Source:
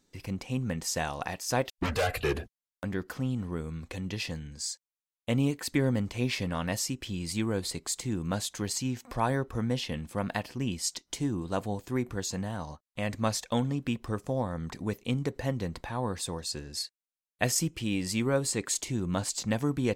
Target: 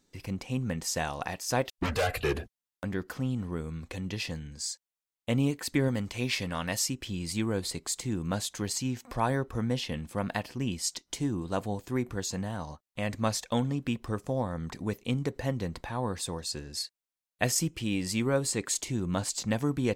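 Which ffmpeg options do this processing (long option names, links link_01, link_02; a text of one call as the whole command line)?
ffmpeg -i in.wav -filter_complex "[0:a]asettb=1/sr,asplit=3[link_01][link_02][link_03];[link_01]atrim=end=5.884[link_04];[link_02]atrim=start=5.88:end=6.89,asetpts=PTS-STARTPTS,afade=type=in:duration=0.004:curve=qsin,afade=type=out:start_time=1.006:duration=0.004:curve=qsin,tiltshelf=frequency=970:gain=-3[link_05];[link_03]atrim=start=6.886[link_06];[link_04][link_05]acrossfade=duration=0.004:curve1=hsin:curve2=qsin[link_07];[link_07][link_06]acrossfade=duration=0.004:curve1=qsin:curve2=hsin" out.wav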